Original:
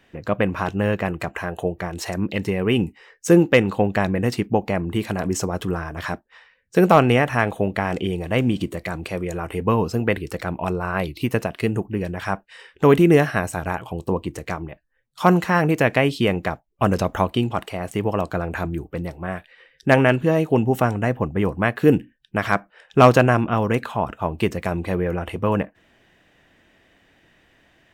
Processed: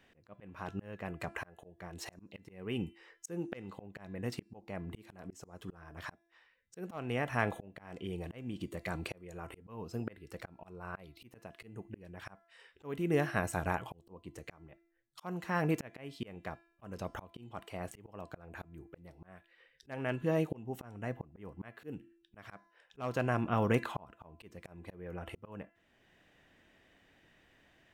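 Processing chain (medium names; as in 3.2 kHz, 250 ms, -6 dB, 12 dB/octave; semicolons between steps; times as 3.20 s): de-hum 338.2 Hz, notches 32; slow attack 744 ms; trim -8 dB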